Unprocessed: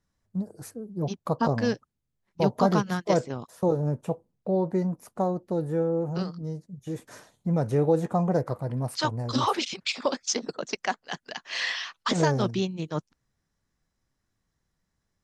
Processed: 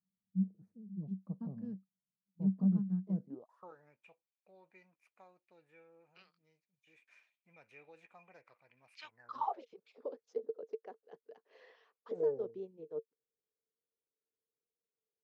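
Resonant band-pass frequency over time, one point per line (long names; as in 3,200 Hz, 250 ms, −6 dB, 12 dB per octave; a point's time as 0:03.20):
resonant band-pass, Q 14
0:03.28 190 Hz
0:03.50 940 Hz
0:03.95 2,400 Hz
0:09.08 2,400 Hz
0:09.67 450 Hz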